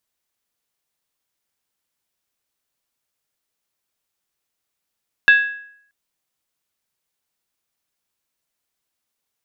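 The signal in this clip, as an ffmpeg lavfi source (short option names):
-f lavfi -i "aevalsrc='0.531*pow(10,-3*t/0.65)*sin(2*PI*1660*t)+0.188*pow(10,-3*t/0.515)*sin(2*PI*2646*t)+0.0668*pow(10,-3*t/0.445)*sin(2*PI*3545.8*t)+0.0237*pow(10,-3*t/0.429)*sin(2*PI*3811.4*t)+0.00841*pow(10,-3*t/0.399)*sin(2*PI*4404*t)':d=0.63:s=44100"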